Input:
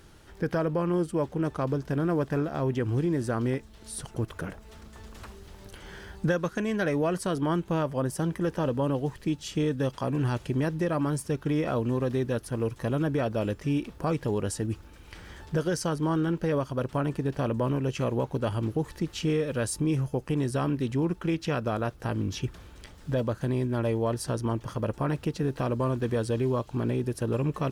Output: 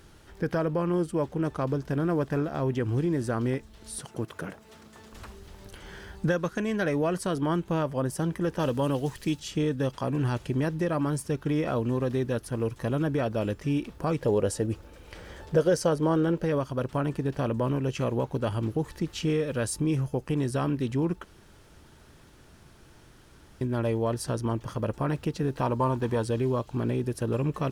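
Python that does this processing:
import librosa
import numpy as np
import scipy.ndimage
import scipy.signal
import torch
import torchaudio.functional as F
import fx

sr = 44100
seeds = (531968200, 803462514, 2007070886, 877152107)

y = fx.highpass(x, sr, hz=140.0, slope=12, at=(3.99, 5.12))
y = fx.high_shelf(y, sr, hz=2500.0, db=10.0, at=(8.59, 9.4))
y = fx.peak_eq(y, sr, hz=530.0, db=9.5, octaves=0.72, at=(14.21, 16.44))
y = fx.peak_eq(y, sr, hz=920.0, db=12.0, octaves=0.31, at=(25.61, 26.24))
y = fx.edit(y, sr, fx.room_tone_fill(start_s=21.24, length_s=2.37), tone=tone)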